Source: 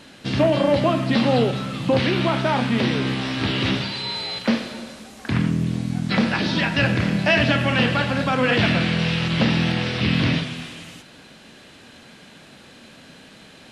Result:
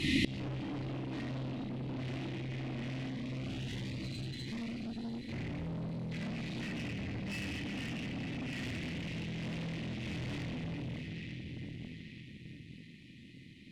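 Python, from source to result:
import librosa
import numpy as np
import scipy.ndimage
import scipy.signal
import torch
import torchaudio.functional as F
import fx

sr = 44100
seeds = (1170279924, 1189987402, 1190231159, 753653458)

y = fx.brickwall_bandstop(x, sr, low_hz=370.0, high_hz=1800.0)
y = fx.high_shelf(y, sr, hz=3500.0, db=-8.5)
y = fx.echo_alternate(y, sr, ms=444, hz=1000.0, feedback_pct=63, wet_db=-7.0)
y = fx.room_shoebox(y, sr, seeds[0], volume_m3=1000.0, walls='mixed', distance_m=4.0)
y = fx.rider(y, sr, range_db=4, speed_s=2.0)
y = fx.bass_treble(y, sr, bass_db=-2, treble_db=-4)
y = fx.tube_stage(y, sr, drive_db=20.0, bias=0.6)
y = fx.gate_flip(y, sr, shuts_db=-30.0, range_db=-31)
y = fx.notch_cascade(y, sr, direction='rising', hz=1.5, at=(3.08, 5.13), fade=0.02)
y = F.gain(torch.from_numpy(y), 14.0).numpy()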